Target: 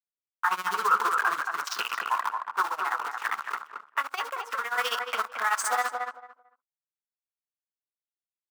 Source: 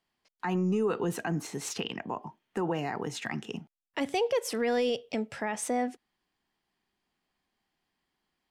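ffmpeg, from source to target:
-filter_complex "[0:a]afwtdn=0.00891,lowpass=8400,highshelf=f=2800:g=6.5,asplit=2[s0][s1];[s1]adelay=26,volume=0.501[s2];[s0][s2]amix=inputs=2:normalize=0,acrusher=bits=7:dc=4:mix=0:aa=0.000001,tremolo=f=15:d=0.87,asettb=1/sr,asplit=3[s3][s4][s5];[s3]atrim=end=2.634[s6];[s4]atrim=start=2.63:end=4.76,asetpts=PTS-STARTPTS,afade=t=in:d=0.004:c=qsin,afade=t=out:st=2.126:d=0.004:c=qsin,acompressor=threshold=0.0141:ratio=6[s7];[s5]atrim=start=4.756[s8];[s6][s7]acrossfade=d=0.004:c1=hsin:c2=qsin[s9];[s9][s8]acrossfade=d=0.004:c1=qsin:c2=hsin,highpass=f=1100:t=q:w=5.3,alimiter=level_in=1.12:limit=0.0631:level=0:latency=1:release=27,volume=0.891,equalizer=f=1400:t=o:w=0.35:g=12,asplit=2[s10][s11];[s11]adelay=223,lowpass=f=1700:p=1,volume=0.631,asplit=2[s12][s13];[s13]adelay=223,lowpass=f=1700:p=1,volume=0.21,asplit=2[s14][s15];[s15]adelay=223,lowpass=f=1700:p=1,volume=0.21[s16];[s10][s12][s14][s16]amix=inputs=4:normalize=0,volume=2.24"

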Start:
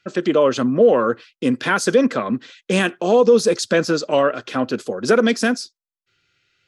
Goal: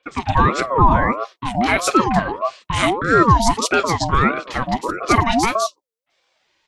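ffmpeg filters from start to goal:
-filter_complex "[0:a]acrossover=split=350|2400[s0][s1][s2];[s2]adelay=30[s3];[s0]adelay=120[s4];[s4][s1][s3]amix=inputs=3:normalize=0,aeval=exprs='val(0)*sin(2*PI*680*n/s+680*0.35/1.6*sin(2*PI*1.6*n/s))':c=same,volume=1.78"

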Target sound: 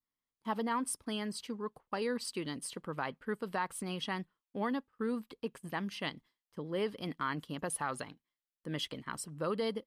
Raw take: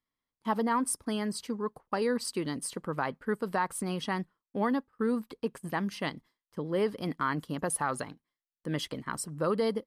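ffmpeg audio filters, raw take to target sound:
-af "adynamicequalizer=threshold=0.00224:dfrequency=3000:dqfactor=1.4:tfrequency=3000:tqfactor=1.4:attack=5:release=100:ratio=0.375:range=3.5:mode=boostabove:tftype=bell,volume=0.501"

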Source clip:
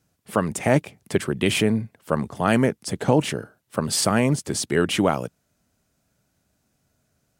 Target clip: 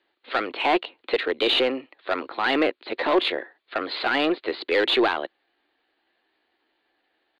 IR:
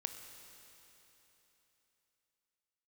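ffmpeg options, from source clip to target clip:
-filter_complex "[0:a]acrossover=split=910[s0][s1];[s1]aeval=exprs='0.335*sin(PI/2*1.58*val(0)/0.335)':c=same[s2];[s0][s2]amix=inputs=2:normalize=0,equalizer=f=110:w=0.46:g=-10,aresample=8000,volume=7.94,asoftclip=hard,volume=0.126,aresample=44100,asetrate=52444,aresample=44100,atempo=0.840896,lowshelf=f=230:t=q:w=3:g=-14,aeval=exprs='0.316*(cos(1*acos(clip(val(0)/0.316,-1,1)))-cos(1*PI/2))+0.00794*(cos(4*acos(clip(val(0)/0.316,-1,1)))-cos(4*PI/2))+0.00251*(cos(6*acos(clip(val(0)/0.316,-1,1)))-cos(6*PI/2))+0.00355*(cos(7*acos(clip(val(0)/0.316,-1,1)))-cos(7*PI/2))':c=same"

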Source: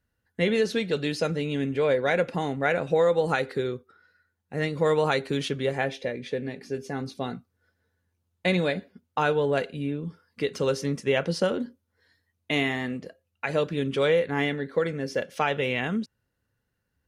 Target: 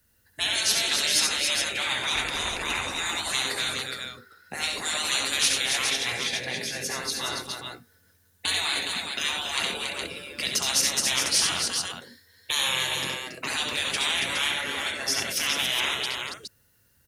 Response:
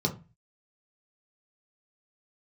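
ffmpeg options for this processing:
-filter_complex "[0:a]asettb=1/sr,asplit=3[s0][s1][s2];[s0]atrim=end=2.144[s3];[s1]atrim=start=2.14:end=2.74,asetpts=PTS-STARTPTS,afade=t=in:d=0.004:c=qsin,afade=t=out:st=0.596:d=0.004:c=qsin,tremolo=f=230:d=0.462[s4];[s2]atrim=start=2.736[s5];[s3][s4]acrossfade=d=0.004:c1=hsin:c2=qsin[s6];[s6][s5]acrossfade=d=0.004:c1=qsin:c2=hsin,afftfilt=real='re*lt(hypot(re,im),0.0631)':imag='im*lt(hypot(re,im),0.0631)':win_size=1024:overlap=0.75,aecho=1:1:69|91|233|241|279|416:0.501|0.355|0.106|0.133|0.531|0.531,acrossover=split=160|730[s7][s8][s9];[s9]crystalizer=i=3.5:c=0[s10];[s7][s8][s10]amix=inputs=3:normalize=0,volume=2"

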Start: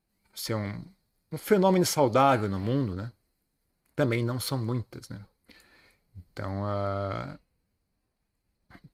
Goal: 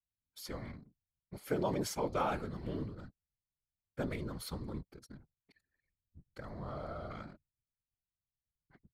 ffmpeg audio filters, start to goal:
-af "anlmdn=0.00251,aeval=exprs='0.376*(cos(1*acos(clip(val(0)/0.376,-1,1)))-cos(1*PI/2))+0.0075*(cos(2*acos(clip(val(0)/0.376,-1,1)))-cos(2*PI/2))+0.00596*(cos(4*acos(clip(val(0)/0.376,-1,1)))-cos(4*PI/2))':c=same,afftfilt=real='hypot(re,im)*cos(2*PI*random(0))':imag='hypot(re,im)*sin(2*PI*random(1))':win_size=512:overlap=0.75,volume=0.501"

